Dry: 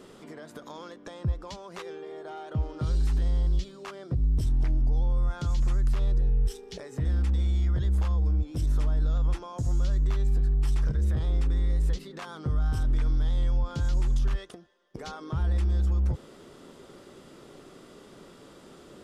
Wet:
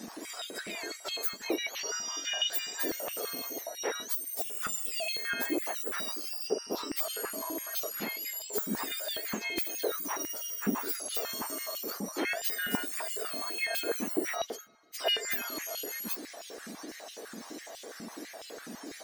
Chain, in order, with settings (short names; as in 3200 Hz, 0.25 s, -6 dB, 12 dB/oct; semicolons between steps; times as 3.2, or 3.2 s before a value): spectrum mirrored in octaves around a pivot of 1500 Hz; 4.64–5.09 comb 1.5 ms, depth 89%; stepped high-pass 12 Hz 210–3000 Hz; gain +6.5 dB